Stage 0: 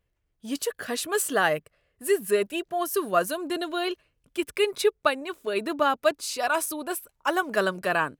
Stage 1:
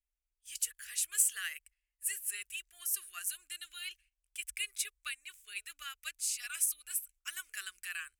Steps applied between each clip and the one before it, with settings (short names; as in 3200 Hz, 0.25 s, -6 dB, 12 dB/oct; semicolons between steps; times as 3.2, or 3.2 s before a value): inverse Chebyshev band-stop 120–980 Hz, stop band 50 dB; gate -58 dBFS, range -9 dB; graphic EQ 250/500/1000/4000/8000 Hz -5/+10/+8/-10/+7 dB; gain -3 dB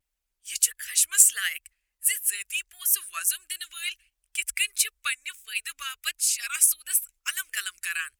harmonic-percussive split percussive +8 dB; vibrato 1.5 Hz 71 cents; gain +4.5 dB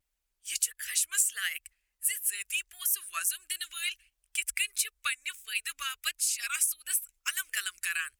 compressor 2.5:1, threshold -28 dBFS, peak gain reduction 11.5 dB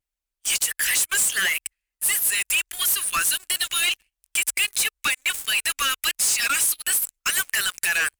sample leveller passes 2; limiter -21.5 dBFS, peak gain reduction 10.5 dB; sample leveller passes 3; gain +4.5 dB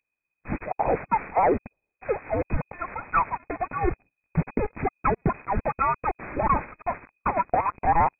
inverted band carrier 2500 Hz; gain +4 dB